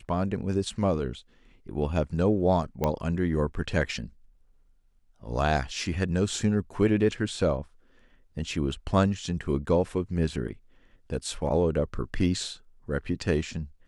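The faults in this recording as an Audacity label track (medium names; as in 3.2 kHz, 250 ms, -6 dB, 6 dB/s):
2.840000	2.840000	pop -13 dBFS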